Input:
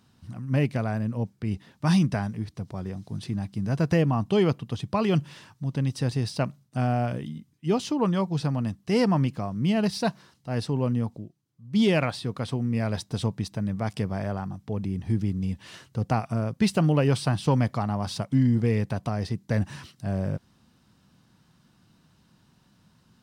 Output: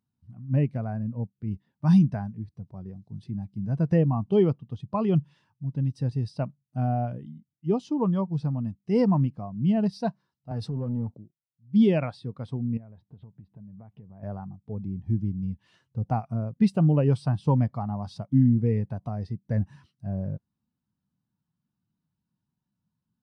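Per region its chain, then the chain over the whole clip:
0:10.51–0:11.18: high-pass filter 86 Hz 24 dB per octave + downward compressor 4 to 1, threshold −28 dBFS + leveller curve on the samples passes 2
0:12.77–0:14.23: high-frequency loss of the air 410 metres + downward compressor 16 to 1, threshold −33 dBFS
whole clip: parametric band 880 Hz +2.5 dB 0.6 octaves; every bin expanded away from the loudest bin 1.5 to 1

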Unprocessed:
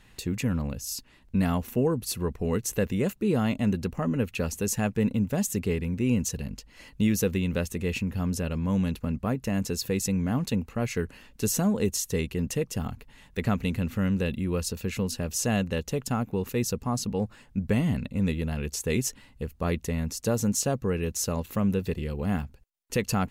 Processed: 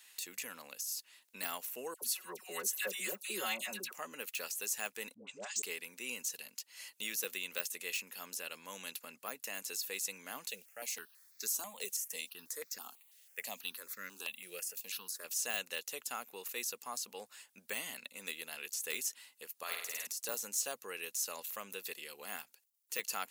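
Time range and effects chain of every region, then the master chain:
0:01.94–0:03.92: comb filter 5.4 ms, depth 100% + all-pass dispersion lows, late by 79 ms, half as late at 1,400 Hz
0:05.14–0:05.62: Butterworth low-pass 8,200 Hz 72 dB per octave + all-pass dispersion highs, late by 132 ms, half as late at 600 Hz + multiband upward and downward expander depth 40%
0:10.49–0:15.23: noise gate −42 dBFS, range −15 dB + background noise pink −67 dBFS + step-sequenced phaser 6.1 Hz 270–3,000 Hz
0:19.63–0:20.07: high-pass filter 840 Hz 6 dB per octave + flutter between parallel walls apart 8.8 metres, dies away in 0.79 s
whole clip: high-pass filter 370 Hz 12 dB per octave; de-essing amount 95%; first difference; level +7.5 dB

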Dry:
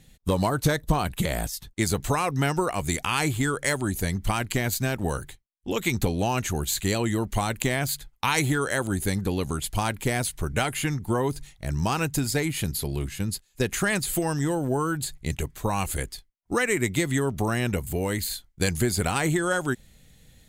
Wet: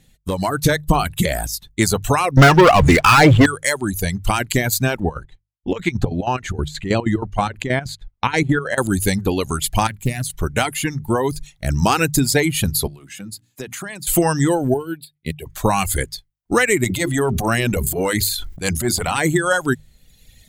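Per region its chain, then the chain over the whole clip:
0:02.37–0:03.46: Bessel low-pass filter 2,400 Hz + parametric band 1,400 Hz +3.5 dB 0.44 octaves + leveller curve on the samples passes 5
0:05.00–0:08.78: head-to-tape spacing loss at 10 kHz 20 dB + square-wave tremolo 6.3 Hz, depth 65%, duty 60%
0:09.87–0:10.30: drawn EQ curve 170 Hz 0 dB, 400 Hz −13 dB, 6,700 Hz −6 dB + highs frequency-modulated by the lows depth 0.37 ms
0:12.87–0:14.07: high-pass filter 110 Hz 24 dB per octave + mains-hum notches 60/120/180/240/300 Hz + downward compressor 3 to 1, threshold −43 dBFS
0:14.74–0:15.46: high-pass filter 120 Hz + phaser with its sweep stopped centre 2,900 Hz, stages 4 + expander for the loud parts 2.5 to 1, over −39 dBFS
0:16.84–0:19.18: transient designer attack −11 dB, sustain −4 dB + mains-hum notches 50/100/150/200/250/300/350/400 Hz + level that may fall only so fast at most 26 dB per second
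whole clip: reverb reduction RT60 1.3 s; mains-hum notches 50/100/150 Hz; automatic gain control gain up to 11.5 dB

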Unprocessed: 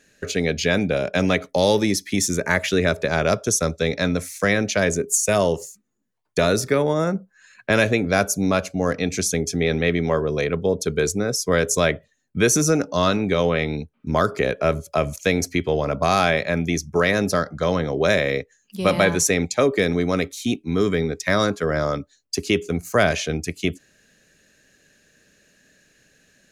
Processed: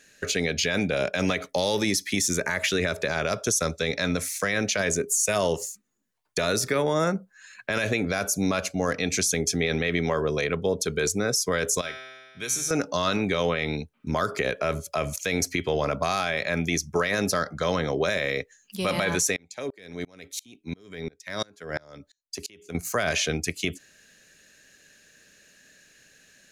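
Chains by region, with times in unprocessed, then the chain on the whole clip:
0:11.81–0:12.71: high-shelf EQ 2,800 Hz +8.5 dB + tuned comb filter 130 Hz, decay 1.7 s, mix 90%
0:19.36–0:22.75: parametric band 1,200 Hz −9 dB 0.22 octaves + downward compressor, threshold −20 dBFS + tremolo with a ramp in dB swelling 2.9 Hz, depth 32 dB
whole clip: tilt shelving filter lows −4 dB, about 840 Hz; brickwall limiter −14.5 dBFS

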